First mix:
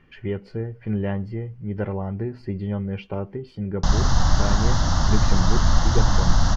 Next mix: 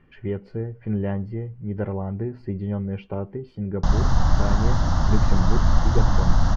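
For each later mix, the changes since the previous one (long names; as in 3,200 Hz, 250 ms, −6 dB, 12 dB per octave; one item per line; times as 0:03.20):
master: add high-shelf EQ 2,400 Hz −10.5 dB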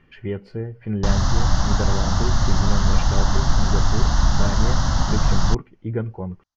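background: entry −2.80 s
master: add high-shelf EQ 2,400 Hz +10.5 dB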